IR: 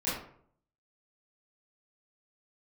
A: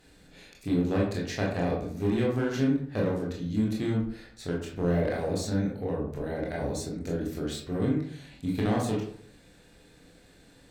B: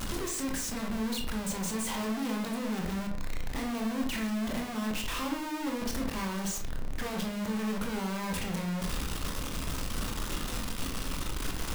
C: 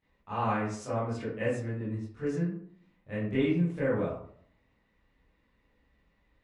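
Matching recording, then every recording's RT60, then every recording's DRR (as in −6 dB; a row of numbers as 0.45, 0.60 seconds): C; 0.60, 0.60, 0.60 seconds; −3.5, 1.0, −12.0 decibels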